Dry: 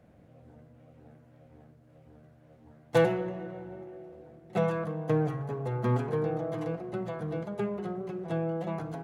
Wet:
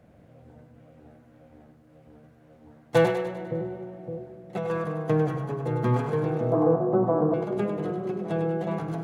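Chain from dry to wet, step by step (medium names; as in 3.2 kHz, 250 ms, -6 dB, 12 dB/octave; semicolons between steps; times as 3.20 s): 3.10–4.70 s: compression 2.5:1, threshold -35 dBFS, peak gain reduction 9 dB; 6.52–7.34 s: FFT filter 130 Hz 0 dB, 250 Hz +10 dB, 1.1 kHz +10 dB, 2.3 kHz -19 dB; on a send: two-band feedback delay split 470 Hz, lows 563 ms, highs 100 ms, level -7 dB; on the sum: trim +3 dB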